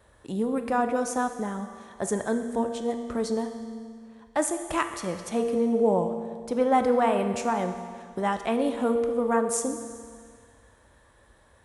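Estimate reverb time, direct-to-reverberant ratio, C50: 2.0 s, 6.5 dB, 8.0 dB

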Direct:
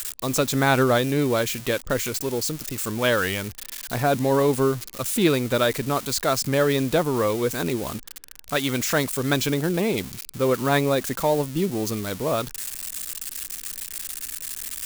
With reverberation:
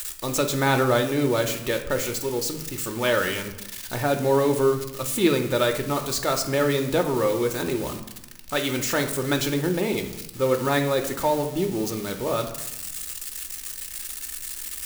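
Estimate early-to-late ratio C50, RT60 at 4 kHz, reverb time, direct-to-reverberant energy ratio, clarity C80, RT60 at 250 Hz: 10.0 dB, 0.65 s, 0.95 s, 4.0 dB, 12.5 dB, 1.3 s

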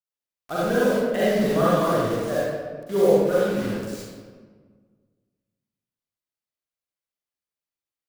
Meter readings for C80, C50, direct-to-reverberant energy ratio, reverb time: −2.0 dB, −6.0 dB, −10.0 dB, 1.6 s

